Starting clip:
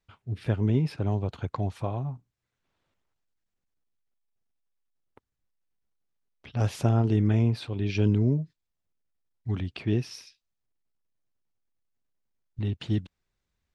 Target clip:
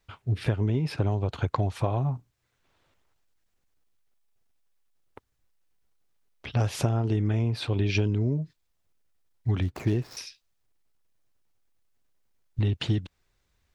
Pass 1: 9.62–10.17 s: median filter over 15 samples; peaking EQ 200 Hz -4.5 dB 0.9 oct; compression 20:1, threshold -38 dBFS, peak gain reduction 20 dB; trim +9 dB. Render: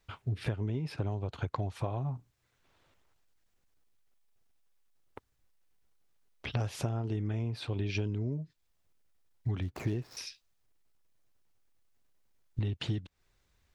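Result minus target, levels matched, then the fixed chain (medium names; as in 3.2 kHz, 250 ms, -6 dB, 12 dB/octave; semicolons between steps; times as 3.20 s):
compression: peak gain reduction +8 dB
9.62–10.17 s: median filter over 15 samples; peaking EQ 200 Hz -4.5 dB 0.9 oct; compression 20:1, threshold -29.5 dBFS, peak gain reduction 12 dB; trim +9 dB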